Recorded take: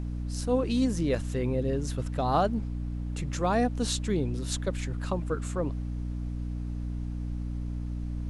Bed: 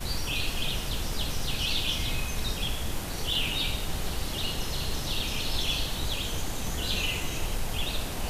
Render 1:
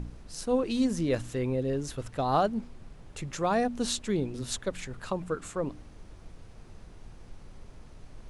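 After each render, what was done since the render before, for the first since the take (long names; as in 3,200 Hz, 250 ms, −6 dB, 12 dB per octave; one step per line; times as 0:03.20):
hum removal 60 Hz, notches 5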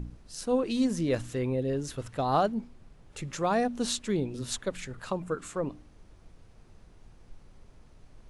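noise reduction from a noise print 6 dB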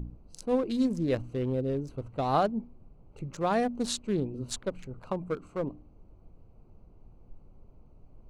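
adaptive Wiener filter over 25 samples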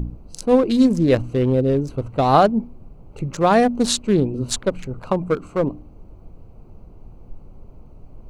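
level +12 dB
brickwall limiter −2 dBFS, peak gain reduction 1 dB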